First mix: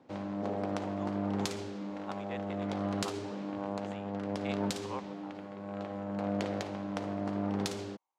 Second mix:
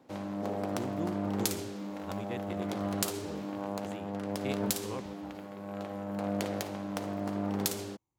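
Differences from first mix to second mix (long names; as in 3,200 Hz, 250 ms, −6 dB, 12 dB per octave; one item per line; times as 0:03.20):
speech: remove high-pass with resonance 790 Hz, resonance Q 1.8
master: remove high-frequency loss of the air 92 metres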